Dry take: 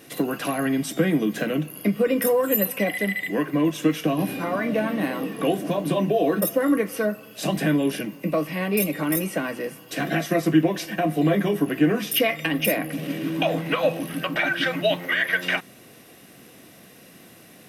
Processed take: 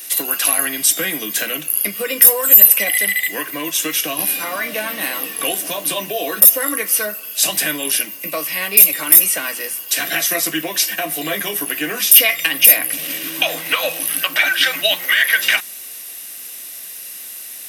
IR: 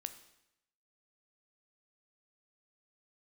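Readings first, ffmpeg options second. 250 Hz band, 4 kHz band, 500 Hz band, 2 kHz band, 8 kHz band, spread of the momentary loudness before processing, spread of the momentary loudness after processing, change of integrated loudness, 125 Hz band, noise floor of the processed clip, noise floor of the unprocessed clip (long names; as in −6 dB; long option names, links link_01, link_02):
−8.5 dB, +12.5 dB, −3.0 dB, +8.0 dB, +20.0 dB, 6 LU, 15 LU, +9.5 dB, −13.0 dB, −33 dBFS, −49 dBFS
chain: -af "aderivative,apsyclip=21dB,volume=-1.5dB"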